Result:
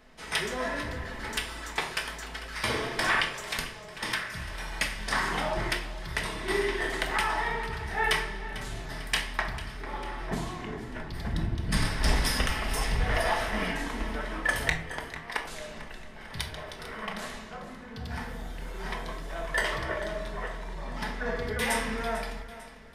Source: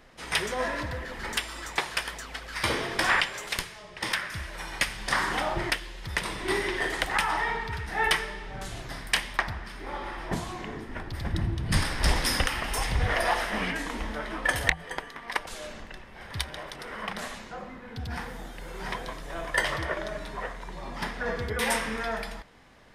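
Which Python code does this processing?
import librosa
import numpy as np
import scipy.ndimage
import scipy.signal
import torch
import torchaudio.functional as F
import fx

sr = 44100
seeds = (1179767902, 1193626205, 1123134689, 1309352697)

p1 = np.clip(10.0 ** (15.0 / 20.0) * x, -1.0, 1.0) / 10.0 ** (15.0 / 20.0)
p2 = x + (p1 * librosa.db_to_amplitude(-11.0))
p3 = fx.echo_feedback(p2, sr, ms=447, feedback_pct=50, wet_db=-15.5)
p4 = fx.room_shoebox(p3, sr, seeds[0], volume_m3=660.0, walls='furnished', distance_m=1.5)
y = p4 * librosa.db_to_amplitude(-5.5)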